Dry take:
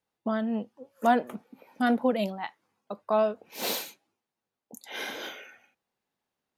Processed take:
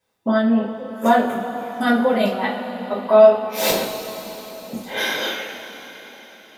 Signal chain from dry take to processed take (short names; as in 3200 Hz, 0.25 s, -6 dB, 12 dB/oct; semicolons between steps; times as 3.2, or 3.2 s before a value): 3.7–4.97 tilt -4 dB/oct; in parallel at +0.5 dB: compressor, threshold -32 dBFS, peak gain reduction 14.5 dB; on the sum: two-slope reverb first 0.33 s, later 4.9 s, from -18 dB, DRR -8 dB; gain -1 dB